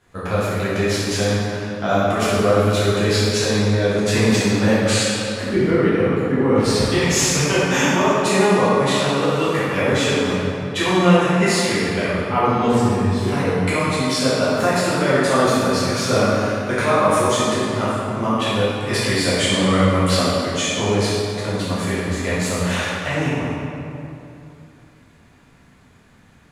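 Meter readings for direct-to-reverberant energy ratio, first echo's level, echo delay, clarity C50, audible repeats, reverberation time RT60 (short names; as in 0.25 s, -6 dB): -11.0 dB, none, none, -4.0 dB, none, 2.8 s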